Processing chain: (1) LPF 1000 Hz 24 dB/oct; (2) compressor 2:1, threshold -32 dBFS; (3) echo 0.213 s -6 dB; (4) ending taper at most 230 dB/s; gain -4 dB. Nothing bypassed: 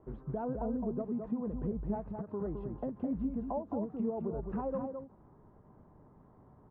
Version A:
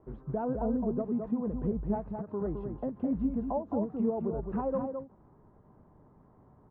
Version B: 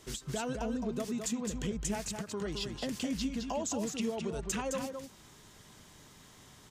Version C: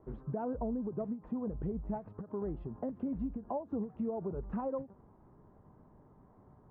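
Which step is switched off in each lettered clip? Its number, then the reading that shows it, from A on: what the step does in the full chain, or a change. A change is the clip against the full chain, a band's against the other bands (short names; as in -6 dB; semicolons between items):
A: 2, loudness change +4.0 LU; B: 1, crest factor change +2.0 dB; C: 3, loudness change -1.5 LU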